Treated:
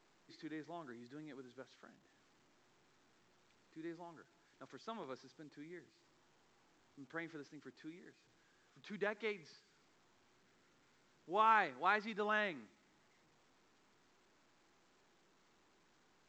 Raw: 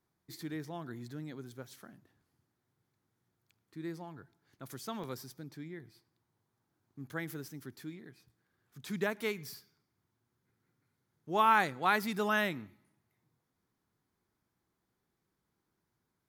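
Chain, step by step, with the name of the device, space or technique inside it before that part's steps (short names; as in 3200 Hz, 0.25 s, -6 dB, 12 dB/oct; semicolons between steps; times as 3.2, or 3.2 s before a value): telephone (BPF 270–3500 Hz; gain -5.5 dB; A-law 128 kbps 16000 Hz)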